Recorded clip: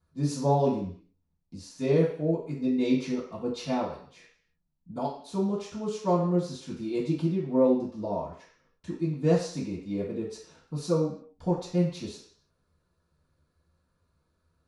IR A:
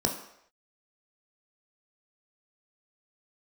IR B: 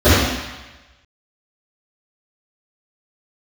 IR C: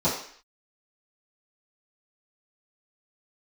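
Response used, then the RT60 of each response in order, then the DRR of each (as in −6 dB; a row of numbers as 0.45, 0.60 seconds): C; non-exponential decay, 1.1 s, 0.55 s; 1.5, −18.5, −13.5 decibels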